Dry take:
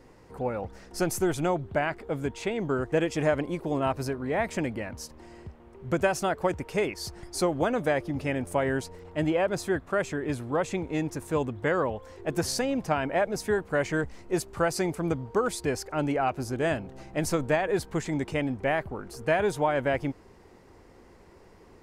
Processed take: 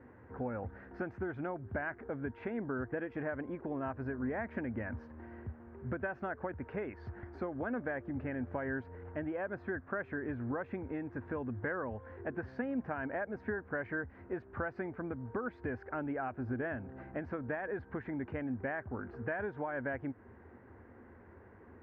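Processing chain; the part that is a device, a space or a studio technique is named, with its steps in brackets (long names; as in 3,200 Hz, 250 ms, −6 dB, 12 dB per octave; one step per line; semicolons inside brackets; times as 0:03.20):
bass amplifier (downward compressor 4 to 1, threshold −33 dBFS, peak gain reduction 12 dB; loudspeaker in its box 72–2,000 Hz, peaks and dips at 80 Hz +10 dB, 110 Hz +6 dB, 160 Hz −6 dB, 240 Hz +8 dB, 1,600 Hz +9 dB)
level −4 dB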